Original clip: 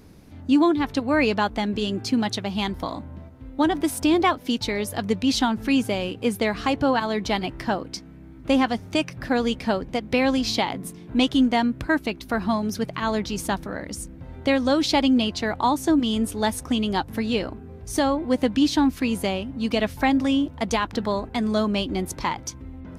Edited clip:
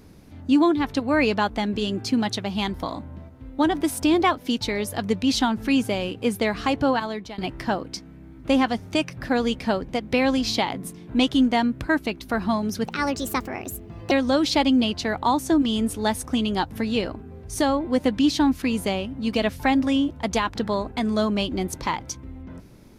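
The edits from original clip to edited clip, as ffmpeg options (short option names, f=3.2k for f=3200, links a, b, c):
-filter_complex "[0:a]asplit=4[a][b][c][d];[a]atrim=end=7.38,asetpts=PTS-STARTPTS,afade=t=out:st=6.89:d=0.49:silence=0.1[e];[b]atrim=start=7.38:end=12.864,asetpts=PTS-STARTPTS,afade=t=in:d=0.004:c=hsin:silence=0.1[f];[c]atrim=start=12.86:end=14.49,asetpts=PTS-STARTPTS,asetrate=57330,aresample=44100[g];[d]atrim=start=14.486[h];[e][f]concat=n=2:v=0:a=1[i];[i][g]acrossfade=d=0.004:c1=hsin:c2=hsin[j];[j][h]acrossfade=d=0.004:c1=hsin:c2=hsin"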